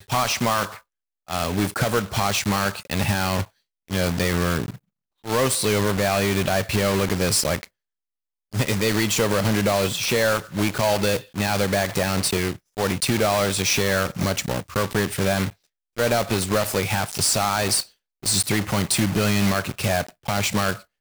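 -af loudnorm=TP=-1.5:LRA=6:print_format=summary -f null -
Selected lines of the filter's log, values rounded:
Input Integrated:    -22.3 LUFS
Input True Peak:     -10.6 dBTP
Input LRA:             2.3 LU
Input Threshold:     -32.5 LUFS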